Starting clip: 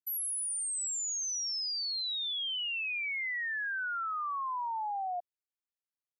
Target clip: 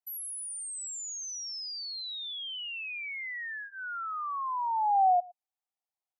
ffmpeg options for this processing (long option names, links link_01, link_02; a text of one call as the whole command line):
ffmpeg -i in.wav -af "highpass=frequency=750:width_type=q:width=7,bandreject=frequency=1600:width=9.8,aecho=1:1:111:0.0668,volume=-4dB" out.wav